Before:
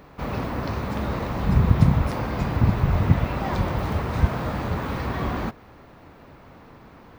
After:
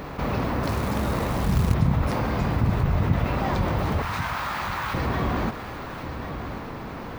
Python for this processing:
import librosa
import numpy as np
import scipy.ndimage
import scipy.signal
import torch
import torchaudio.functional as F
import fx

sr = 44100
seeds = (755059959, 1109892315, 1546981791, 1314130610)

y = fx.quant_float(x, sr, bits=2, at=(0.63, 1.74))
y = fx.cheby2_highpass(y, sr, hz=200.0, order=4, stop_db=70, at=(4.02, 4.94))
y = y + 10.0 ** (-17.0 / 20.0) * np.pad(y, (int(1091 * sr / 1000.0), 0))[:len(y)]
y = fx.env_flatten(y, sr, amount_pct=50)
y = F.gain(torch.from_numpy(y), -5.5).numpy()